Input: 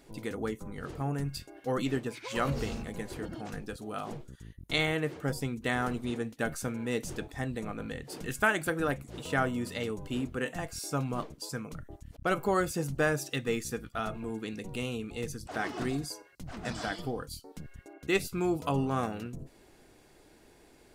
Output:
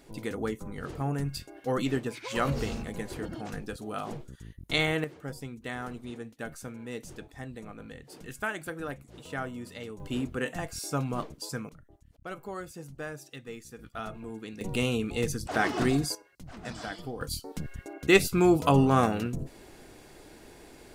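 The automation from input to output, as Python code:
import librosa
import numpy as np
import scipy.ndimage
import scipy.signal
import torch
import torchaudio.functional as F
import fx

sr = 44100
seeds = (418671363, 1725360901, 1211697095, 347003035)

y = fx.gain(x, sr, db=fx.steps((0.0, 2.0), (5.04, -6.5), (10.0, 1.5), (11.69, -11.0), (13.79, -3.5), (14.61, 7.0), (16.15, -3.0), (17.21, 8.0)))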